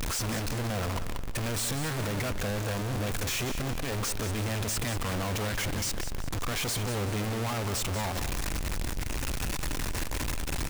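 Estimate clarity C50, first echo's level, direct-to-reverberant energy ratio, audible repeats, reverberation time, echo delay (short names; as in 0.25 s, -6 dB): none, -10.0 dB, none, 3, none, 0.188 s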